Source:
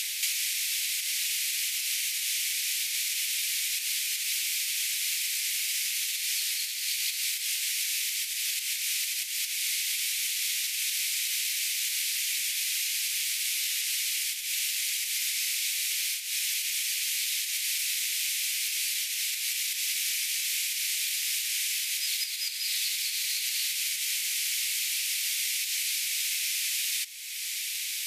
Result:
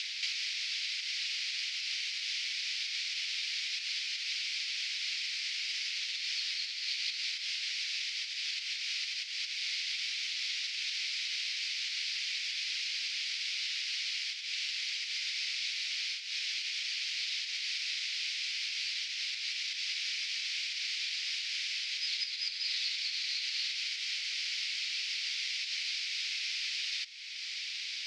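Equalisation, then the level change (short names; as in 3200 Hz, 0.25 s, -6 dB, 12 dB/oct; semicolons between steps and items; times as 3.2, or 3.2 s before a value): elliptic band-pass 1200–5000 Hz, stop band 70 dB; dynamic EQ 2400 Hz, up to -3 dB, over -44 dBFS, Q 1; 0.0 dB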